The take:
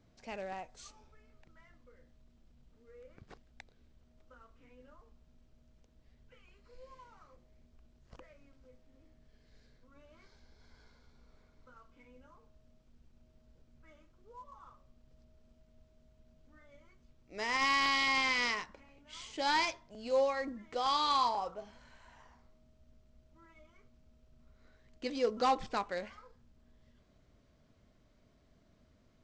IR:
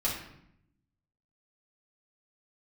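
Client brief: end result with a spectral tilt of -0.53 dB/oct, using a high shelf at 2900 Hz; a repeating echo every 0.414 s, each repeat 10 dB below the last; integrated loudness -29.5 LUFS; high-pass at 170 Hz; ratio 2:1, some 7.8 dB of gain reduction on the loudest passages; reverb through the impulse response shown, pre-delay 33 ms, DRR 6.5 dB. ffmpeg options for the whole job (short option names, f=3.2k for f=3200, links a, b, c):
-filter_complex "[0:a]highpass=170,highshelf=f=2.9k:g=-8,acompressor=threshold=-40dB:ratio=2,aecho=1:1:414|828|1242|1656:0.316|0.101|0.0324|0.0104,asplit=2[a][b];[1:a]atrim=start_sample=2205,adelay=33[c];[b][c]afir=irnorm=-1:irlink=0,volume=-13.5dB[d];[a][d]amix=inputs=2:normalize=0,volume=11dB"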